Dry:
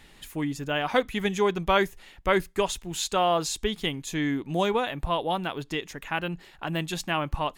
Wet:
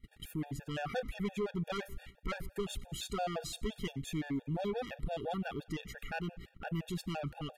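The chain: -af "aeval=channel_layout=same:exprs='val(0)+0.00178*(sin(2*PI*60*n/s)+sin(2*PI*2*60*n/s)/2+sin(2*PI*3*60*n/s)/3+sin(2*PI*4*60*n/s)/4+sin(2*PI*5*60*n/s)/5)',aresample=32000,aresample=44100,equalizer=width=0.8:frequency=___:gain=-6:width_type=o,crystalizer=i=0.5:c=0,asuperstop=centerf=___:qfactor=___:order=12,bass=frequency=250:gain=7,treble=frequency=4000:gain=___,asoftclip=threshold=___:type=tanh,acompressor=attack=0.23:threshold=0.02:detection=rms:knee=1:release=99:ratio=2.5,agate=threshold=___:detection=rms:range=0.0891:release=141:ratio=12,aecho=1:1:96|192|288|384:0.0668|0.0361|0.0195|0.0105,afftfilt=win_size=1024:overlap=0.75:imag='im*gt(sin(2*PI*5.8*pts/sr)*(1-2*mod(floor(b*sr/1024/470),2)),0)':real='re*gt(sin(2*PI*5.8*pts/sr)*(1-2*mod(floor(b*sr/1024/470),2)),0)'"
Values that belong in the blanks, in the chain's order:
6100, 990, 3.1, -5, 0.0668, 0.00708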